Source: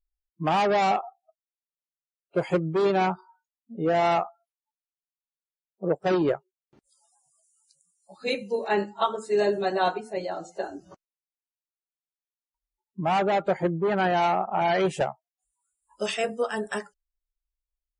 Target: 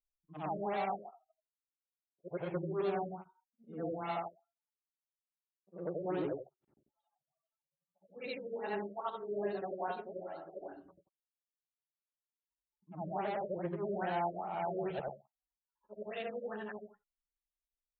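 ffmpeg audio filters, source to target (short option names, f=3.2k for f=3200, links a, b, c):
-af "afftfilt=real='re':imag='-im':win_size=8192:overlap=0.75,afftfilt=real='re*lt(b*sr/1024,620*pow(4500/620,0.5+0.5*sin(2*PI*2.4*pts/sr)))':imag='im*lt(b*sr/1024,620*pow(4500/620,0.5+0.5*sin(2*PI*2.4*pts/sr)))':win_size=1024:overlap=0.75,volume=-8dB"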